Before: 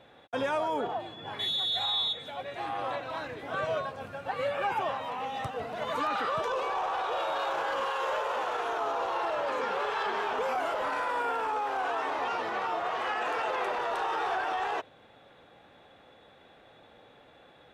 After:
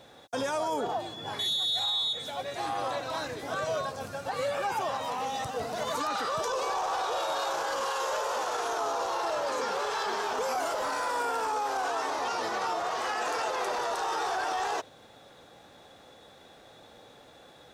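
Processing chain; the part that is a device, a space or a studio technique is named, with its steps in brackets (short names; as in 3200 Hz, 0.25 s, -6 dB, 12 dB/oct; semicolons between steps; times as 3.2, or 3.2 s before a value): over-bright horn tweeter (resonant high shelf 3900 Hz +11 dB, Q 1.5; limiter -25.5 dBFS, peak gain reduction 7.5 dB); gain +3 dB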